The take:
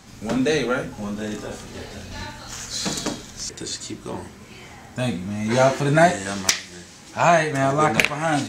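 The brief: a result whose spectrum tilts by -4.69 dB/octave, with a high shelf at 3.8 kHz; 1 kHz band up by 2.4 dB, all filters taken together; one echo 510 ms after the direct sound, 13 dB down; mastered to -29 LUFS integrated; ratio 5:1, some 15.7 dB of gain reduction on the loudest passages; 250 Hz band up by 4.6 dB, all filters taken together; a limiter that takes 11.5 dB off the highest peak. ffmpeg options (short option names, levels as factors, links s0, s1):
-af "equalizer=f=250:t=o:g=5.5,equalizer=f=1000:t=o:g=3.5,highshelf=f=3800:g=-5.5,acompressor=threshold=0.0447:ratio=5,alimiter=limit=0.0708:level=0:latency=1,aecho=1:1:510:0.224,volume=1.68"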